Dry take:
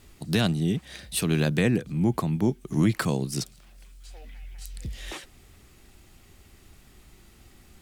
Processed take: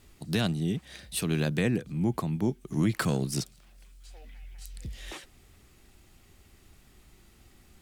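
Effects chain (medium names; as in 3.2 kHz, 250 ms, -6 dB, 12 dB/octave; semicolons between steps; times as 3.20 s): 2.93–3.41 s: waveshaping leveller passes 1; trim -4 dB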